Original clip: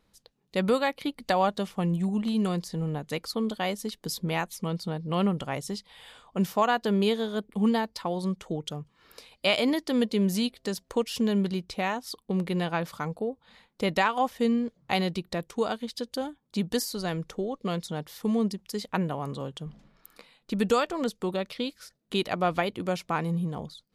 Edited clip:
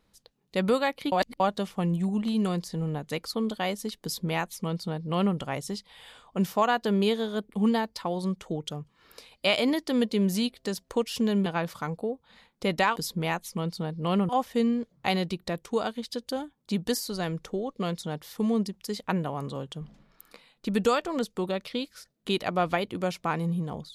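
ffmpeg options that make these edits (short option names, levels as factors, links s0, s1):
-filter_complex "[0:a]asplit=6[s0][s1][s2][s3][s4][s5];[s0]atrim=end=1.122[s6];[s1]atrim=start=1.118:end=1.402,asetpts=PTS-STARTPTS,areverse[s7];[s2]atrim=start=1.398:end=11.462[s8];[s3]atrim=start=12.638:end=14.142[s9];[s4]atrim=start=4.028:end=5.362[s10];[s5]atrim=start=14.138[s11];[s6][s7]acrossfade=d=0.004:c1=hsin:c2=hsin[s12];[s12][s8]acrossfade=d=0.004:c1=hsin:c2=hsin[s13];[s13][s9]acrossfade=d=0.004:c1=hsin:c2=hsin[s14];[s14][s10]acrossfade=d=0.004:c1=hsin:c2=hsin[s15];[s15][s11]acrossfade=d=0.004:c1=hsin:c2=hsin"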